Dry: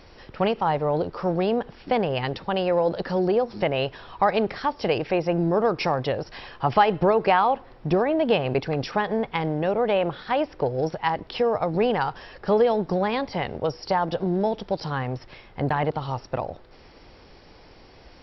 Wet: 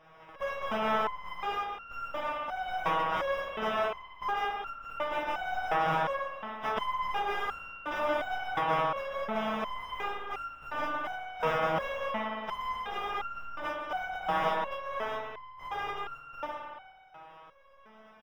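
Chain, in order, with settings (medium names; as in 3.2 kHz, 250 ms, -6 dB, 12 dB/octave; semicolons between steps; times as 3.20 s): spectral contrast reduction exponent 0.15; high-order bell 860 Hz +9 dB; spring tank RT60 2.1 s, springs 55 ms, chirp 45 ms, DRR 1 dB; in parallel at -3 dB: integer overflow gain 10.5 dB; on the sum: Butterworth band-stop 4.3 kHz, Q 3.3; distance through air 350 m; on a send: delay 143 ms -11 dB; on the sum: resonator arpeggio 2.8 Hz 160–1400 Hz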